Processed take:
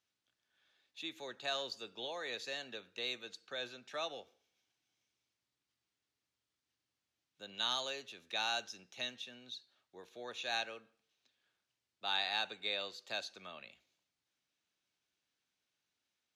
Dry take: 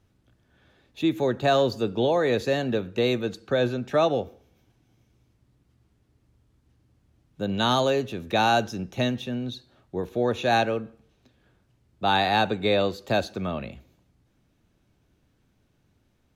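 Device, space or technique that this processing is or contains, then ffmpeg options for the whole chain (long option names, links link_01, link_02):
piezo pickup straight into a mixer: -af "lowpass=5000,aderivative"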